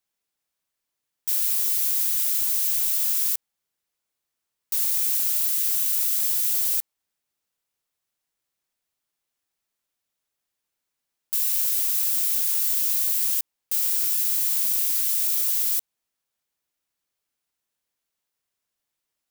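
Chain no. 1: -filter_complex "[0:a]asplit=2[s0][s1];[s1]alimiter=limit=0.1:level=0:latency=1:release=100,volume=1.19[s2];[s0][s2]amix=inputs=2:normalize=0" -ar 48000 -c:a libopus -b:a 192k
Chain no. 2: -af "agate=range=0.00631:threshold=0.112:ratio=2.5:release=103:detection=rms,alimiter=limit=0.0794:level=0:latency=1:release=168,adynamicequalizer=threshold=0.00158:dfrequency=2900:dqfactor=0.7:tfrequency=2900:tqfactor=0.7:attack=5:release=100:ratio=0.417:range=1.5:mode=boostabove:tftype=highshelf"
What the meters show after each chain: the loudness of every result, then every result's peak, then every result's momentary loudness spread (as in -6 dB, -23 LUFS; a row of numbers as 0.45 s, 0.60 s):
-18.0 LUFS, -27.0 LUFS; -7.5 dBFS, -18.5 dBFS; 4 LU, 4 LU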